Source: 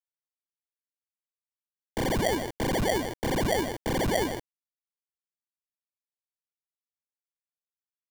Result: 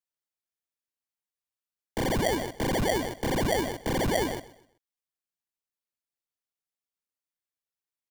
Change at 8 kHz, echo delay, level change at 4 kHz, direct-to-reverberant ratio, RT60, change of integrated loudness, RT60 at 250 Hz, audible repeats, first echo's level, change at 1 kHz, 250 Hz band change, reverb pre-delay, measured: 0.0 dB, 127 ms, 0.0 dB, no reverb, no reverb, 0.0 dB, no reverb, 2, -18.0 dB, 0.0 dB, 0.0 dB, no reverb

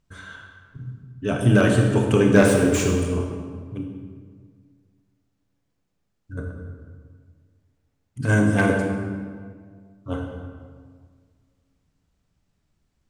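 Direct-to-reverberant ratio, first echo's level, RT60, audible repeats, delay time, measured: 2.0 dB, no echo, 1.8 s, no echo, no echo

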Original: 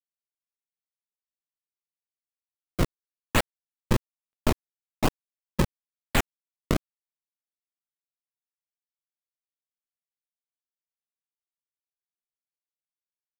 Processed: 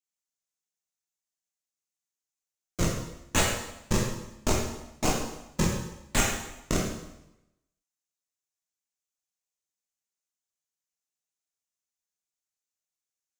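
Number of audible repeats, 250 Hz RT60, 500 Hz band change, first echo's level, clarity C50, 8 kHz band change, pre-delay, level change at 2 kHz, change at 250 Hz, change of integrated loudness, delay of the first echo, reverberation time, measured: no echo, 0.95 s, 0.0 dB, no echo, 2.0 dB, +9.0 dB, 7 ms, 0.0 dB, -0.5 dB, 0.0 dB, no echo, 0.90 s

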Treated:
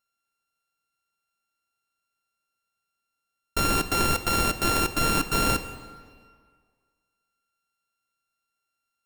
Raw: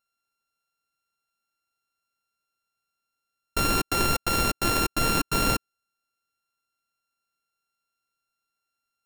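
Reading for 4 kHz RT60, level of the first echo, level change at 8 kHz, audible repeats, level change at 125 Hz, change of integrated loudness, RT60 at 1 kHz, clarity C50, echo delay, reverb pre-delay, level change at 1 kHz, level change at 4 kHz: 1.4 s, no echo, +0.5 dB, no echo, +0.5 dB, +0.5 dB, 1.9 s, 11.5 dB, no echo, 7 ms, +1.0 dB, 0.0 dB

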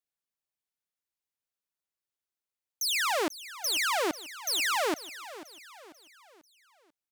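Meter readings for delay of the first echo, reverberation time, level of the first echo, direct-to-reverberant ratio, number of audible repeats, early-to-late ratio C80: 491 ms, no reverb, -15.5 dB, no reverb, 3, no reverb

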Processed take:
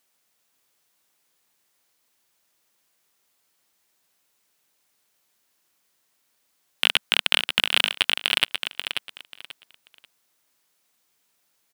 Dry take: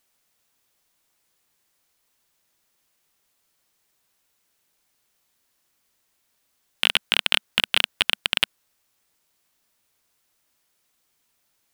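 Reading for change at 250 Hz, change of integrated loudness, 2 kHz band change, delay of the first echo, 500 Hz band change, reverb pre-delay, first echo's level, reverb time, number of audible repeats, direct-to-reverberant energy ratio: -0.5 dB, 0.0 dB, +1.0 dB, 537 ms, +0.5 dB, no reverb, -7.0 dB, no reverb, 3, no reverb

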